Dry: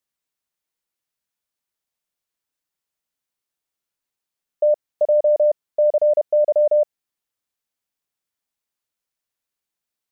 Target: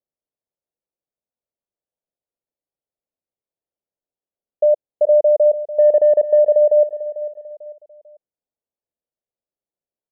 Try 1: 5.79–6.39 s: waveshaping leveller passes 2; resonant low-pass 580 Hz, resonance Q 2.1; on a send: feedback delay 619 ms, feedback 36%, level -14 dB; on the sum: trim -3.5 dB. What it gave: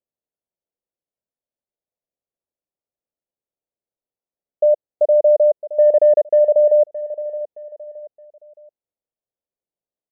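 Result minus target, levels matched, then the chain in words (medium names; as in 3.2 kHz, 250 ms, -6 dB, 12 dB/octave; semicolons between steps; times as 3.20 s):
echo 174 ms late
5.79–6.39 s: waveshaping leveller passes 2; resonant low-pass 580 Hz, resonance Q 2.1; on a send: feedback delay 445 ms, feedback 36%, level -14 dB; on the sum: trim -3.5 dB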